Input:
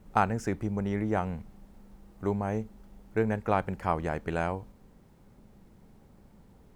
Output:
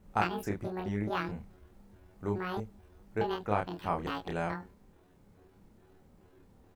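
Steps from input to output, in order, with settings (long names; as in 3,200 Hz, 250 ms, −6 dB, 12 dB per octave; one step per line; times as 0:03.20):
pitch shifter gated in a rhythm +10.5 semitones, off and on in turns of 214 ms
double-tracking delay 29 ms −3 dB
level −5.5 dB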